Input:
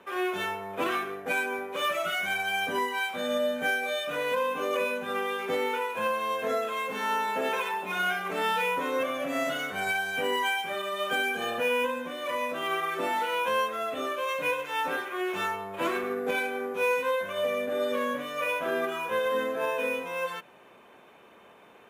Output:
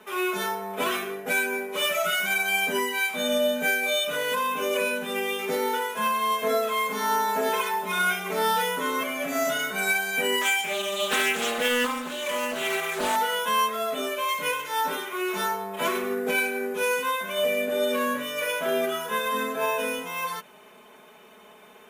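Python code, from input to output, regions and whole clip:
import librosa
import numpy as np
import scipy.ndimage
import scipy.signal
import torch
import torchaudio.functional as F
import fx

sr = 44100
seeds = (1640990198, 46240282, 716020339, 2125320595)

y = fx.chain(x, sr, fx.peak_eq(hz=7100.0, db=9.0, octaves=0.36),
    fx.doppler_dist(depth_ms=0.33), at=(10.41, 13.16))
y = fx.high_shelf(y, sr, hz=4600.0, db=10.5)
y = y + 0.9 * np.pad(y, (int(4.7 * sr / 1000.0), 0))[:len(y)]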